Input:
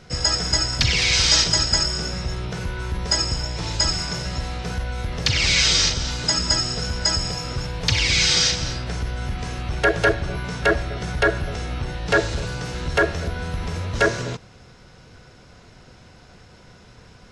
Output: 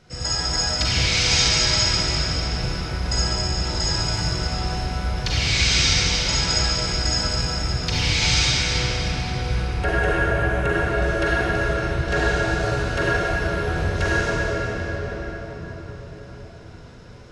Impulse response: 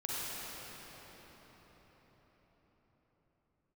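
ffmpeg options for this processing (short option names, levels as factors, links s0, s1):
-filter_complex "[0:a]asettb=1/sr,asplit=3[s0][s1][s2];[s0]atrim=end=8.404[s3];[s1]atrim=start=8.4:end=10.73,asetpts=PTS-STARTPTS,afade=t=in:d=0.004:c=qsin,afade=t=out:st=2.326:d=0.004:c=qsin,equalizer=f=4800:t=o:w=0.73:g=-14[s4];[s2]atrim=start=10.726[s5];[s3][s4]acrossfade=d=0.004:c1=hsin:c2=qsin[s6];[s6][s5]acrossfade=d=0.004:c1=qsin:c2=hsin[s7];[1:a]atrim=start_sample=2205[s8];[s7][s8]afir=irnorm=-1:irlink=0,volume=0.631"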